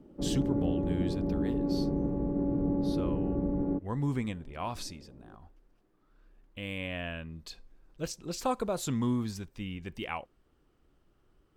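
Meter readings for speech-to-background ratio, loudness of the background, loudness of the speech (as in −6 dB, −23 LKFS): −4.5 dB, −31.5 LKFS, −36.0 LKFS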